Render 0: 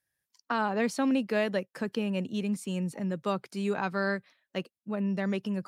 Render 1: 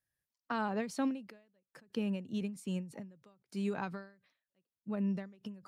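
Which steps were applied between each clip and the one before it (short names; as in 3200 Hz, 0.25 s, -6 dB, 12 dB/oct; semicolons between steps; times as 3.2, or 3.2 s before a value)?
low shelf 190 Hz +8.5 dB; ending taper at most 130 dB/s; gain -7 dB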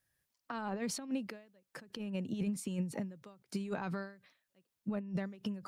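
negative-ratio compressor -38 dBFS, ratio -0.5; limiter -31 dBFS, peak gain reduction 11.5 dB; gain +4 dB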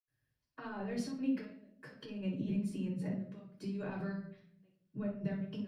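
reverb RT60 0.60 s, pre-delay 77 ms; gain +11.5 dB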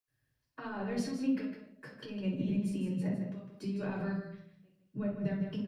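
echo 0.156 s -8.5 dB; gain +3 dB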